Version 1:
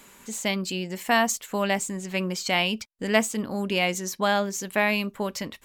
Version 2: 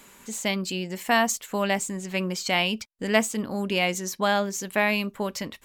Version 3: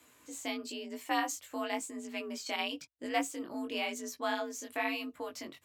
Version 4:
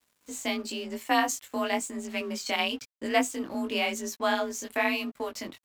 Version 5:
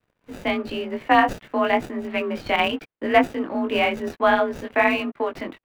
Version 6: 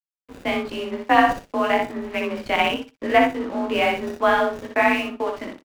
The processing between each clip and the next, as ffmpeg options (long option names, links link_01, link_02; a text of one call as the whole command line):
ffmpeg -i in.wav -af anull out.wav
ffmpeg -i in.wav -af "afreqshift=60,flanger=delay=16:depth=6.8:speed=0.98,volume=-8dB" out.wav
ffmpeg -i in.wav -af "afreqshift=-22,aeval=exprs='sgn(val(0))*max(abs(val(0))-0.00126,0)':channel_layout=same,volume=7.5dB" out.wav
ffmpeg -i in.wav -filter_complex "[0:a]acrossover=split=220|2900[link_01][link_02][link_03];[link_02]dynaudnorm=framelen=240:gausssize=3:maxgain=9.5dB[link_04];[link_03]acrusher=samples=41:mix=1:aa=0.000001[link_05];[link_01][link_04][link_05]amix=inputs=3:normalize=0" out.wav
ffmpeg -i in.wav -filter_complex "[0:a]aeval=exprs='sgn(val(0))*max(abs(val(0))-0.0106,0)':channel_layout=same,asplit=2[link_01][link_02];[link_02]aecho=0:1:61|122|183:0.631|0.114|0.0204[link_03];[link_01][link_03]amix=inputs=2:normalize=0" out.wav